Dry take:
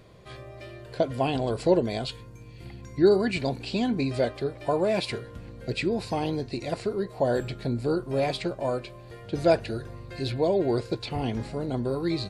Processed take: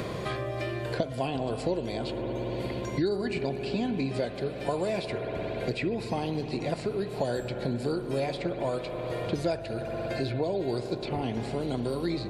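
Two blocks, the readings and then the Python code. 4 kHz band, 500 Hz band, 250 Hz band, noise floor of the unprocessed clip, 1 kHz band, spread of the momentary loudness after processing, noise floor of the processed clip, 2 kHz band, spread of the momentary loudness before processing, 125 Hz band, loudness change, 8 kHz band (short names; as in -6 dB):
-3.5 dB, -4.0 dB, -3.0 dB, -45 dBFS, -3.0 dB, 4 LU, -37 dBFS, -1.5 dB, 19 LU, -1.5 dB, -4.0 dB, -2.0 dB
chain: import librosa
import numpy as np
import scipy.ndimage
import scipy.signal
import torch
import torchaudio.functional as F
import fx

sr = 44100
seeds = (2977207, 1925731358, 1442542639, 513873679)

y = fx.rev_spring(x, sr, rt60_s=3.9, pass_ms=(58,), chirp_ms=55, drr_db=8.5)
y = fx.band_squash(y, sr, depth_pct=100)
y = F.gain(torch.from_numpy(y), -4.5).numpy()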